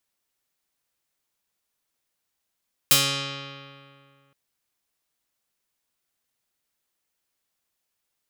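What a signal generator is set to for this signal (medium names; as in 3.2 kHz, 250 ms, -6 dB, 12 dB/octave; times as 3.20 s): plucked string C#3, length 1.42 s, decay 2.28 s, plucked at 0.42, medium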